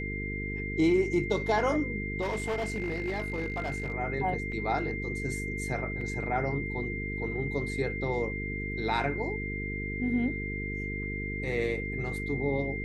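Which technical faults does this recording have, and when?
buzz 50 Hz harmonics 9 -36 dBFS
whine 2.1 kHz -36 dBFS
2.21–3.92 s: clipped -27 dBFS
4.52 s: dropout 2.2 ms
6.01 s: dropout 3 ms

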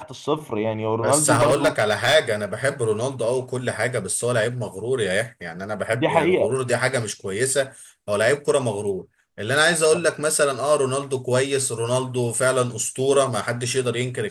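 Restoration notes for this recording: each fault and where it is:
1.32–2.16 s: clipped -12.5 dBFS

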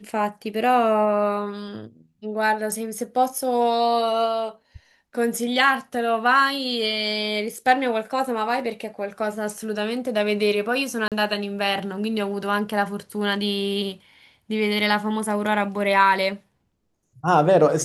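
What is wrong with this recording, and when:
11.08–11.12 s: dropout 37 ms

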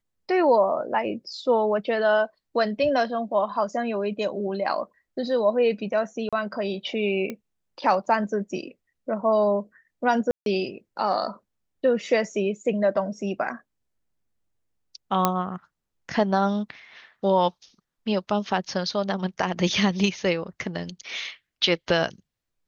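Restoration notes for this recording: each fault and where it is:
6.29–6.33 s: dropout 36 ms
7.30 s: pop -18 dBFS
10.31–10.46 s: dropout 152 ms
15.25 s: pop -5 dBFS

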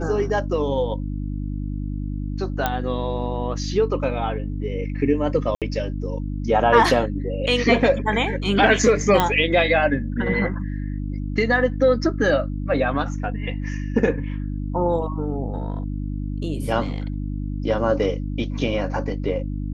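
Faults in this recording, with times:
hum 50 Hz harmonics 6 -27 dBFS
2.66 s: pop -7 dBFS
5.55–5.62 s: dropout 67 ms
9.20 s: pop -4 dBFS

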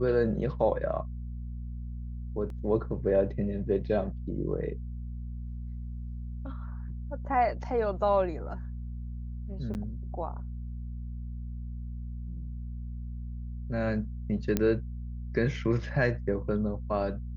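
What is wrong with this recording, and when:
hum 60 Hz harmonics 4 -37 dBFS
2.50 s: dropout 2 ms
9.74–9.75 s: dropout 9.4 ms
14.57 s: pop -12 dBFS

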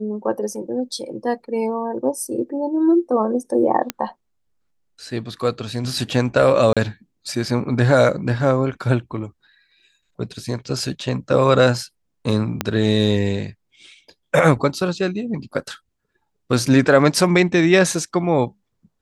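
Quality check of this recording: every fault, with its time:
3.90 s: pop -6 dBFS
6.73–6.77 s: dropout 36 ms
12.61 s: pop -5 dBFS

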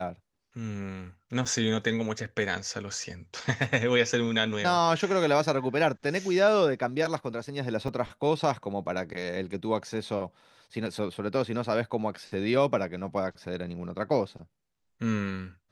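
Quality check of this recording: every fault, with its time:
1.45–1.46 s: dropout 5.5 ms
7.88 s: dropout 4.8 ms

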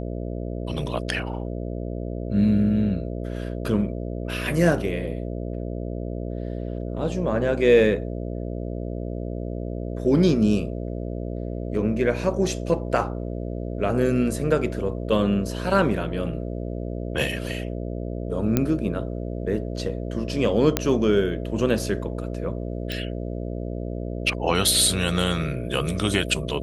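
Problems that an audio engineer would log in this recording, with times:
buzz 60 Hz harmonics 11 -30 dBFS
18.57 s: pop -7 dBFS
20.77 s: pop -4 dBFS
22.92 s: pop -16 dBFS

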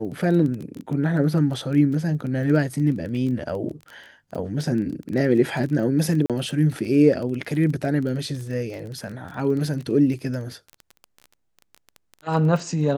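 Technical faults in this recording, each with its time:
crackle 18 per s -29 dBFS
6.26–6.30 s: dropout 37 ms

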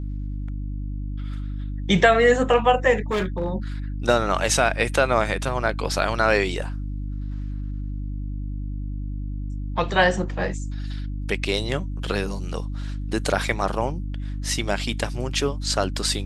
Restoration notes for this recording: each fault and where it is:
hum 50 Hz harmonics 6 -29 dBFS
3.11–3.52 s: clipped -19.5 dBFS

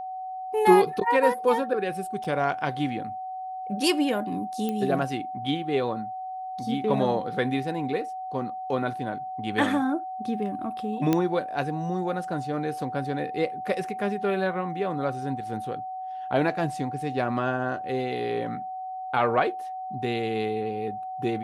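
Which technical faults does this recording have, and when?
whine 750 Hz -32 dBFS
2.24–2.25 s: dropout 5.5 ms
4.69 s: pop -17 dBFS
11.13 s: pop -10 dBFS

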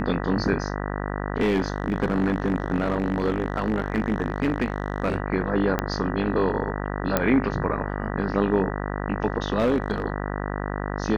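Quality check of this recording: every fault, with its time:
buzz 50 Hz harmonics 39 -29 dBFS
1.40–5.16 s: clipped -17 dBFS
5.79 s: pop -9 dBFS
7.17 s: pop -6 dBFS
9.58–10.02 s: clipped -16.5 dBFS

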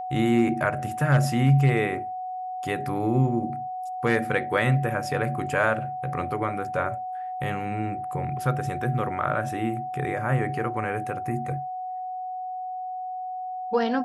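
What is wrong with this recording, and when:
whine 740 Hz -30 dBFS

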